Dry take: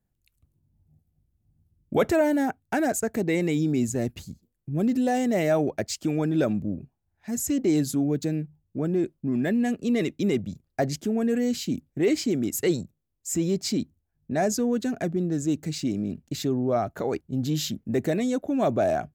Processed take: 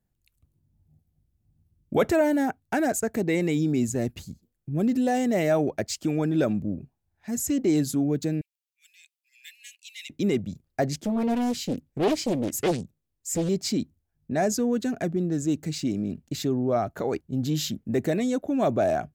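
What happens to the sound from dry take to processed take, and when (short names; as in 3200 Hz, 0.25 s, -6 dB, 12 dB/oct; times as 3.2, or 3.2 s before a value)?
8.41–10.1 steep high-pass 2300 Hz 48 dB/oct
10.94–13.49 Doppler distortion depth 0.74 ms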